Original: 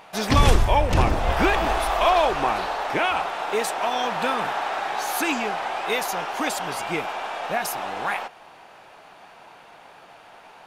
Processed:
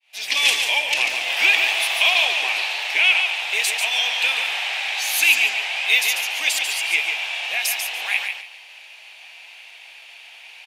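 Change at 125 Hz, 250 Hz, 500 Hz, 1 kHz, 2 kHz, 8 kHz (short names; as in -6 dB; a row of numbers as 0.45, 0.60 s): under -35 dB, under -20 dB, -11.5 dB, -9.5 dB, +10.0 dB, +8.5 dB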